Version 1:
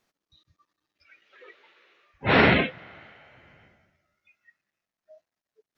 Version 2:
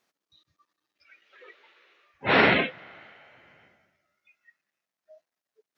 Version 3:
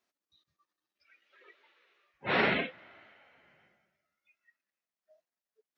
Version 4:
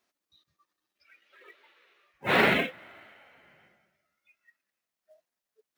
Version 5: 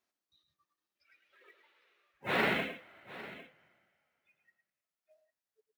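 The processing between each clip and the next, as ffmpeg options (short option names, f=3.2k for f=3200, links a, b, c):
-af "highpass=f=280:p=1"
-af "flanger=delay=3:depth=2.6:regen=-50:speed=0.67:shape=sinusoidal,volume=-4dB"
-af "acrusher=bits=6:mode=log:mix=0:aa=0.000001,volume=5dB"
-af "aecho=1:1:108|803:0.355|0.15,volume=-8dB"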